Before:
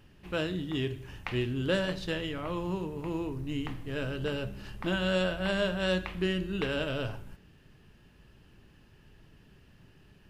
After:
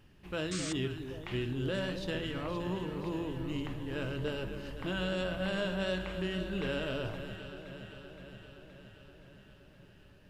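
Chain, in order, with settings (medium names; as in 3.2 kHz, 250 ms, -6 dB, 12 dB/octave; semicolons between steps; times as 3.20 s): peak limiter -23 dBFS, peak gain reduction 6.5 dB; echo whose repeats swap between lows and highs 260 ms, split 960 Hz, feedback 80%, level -8 dB; painted sound noise, 0.51–0.73 s, 1.1–8.9 kHz -37 dBFS; trim -3 dB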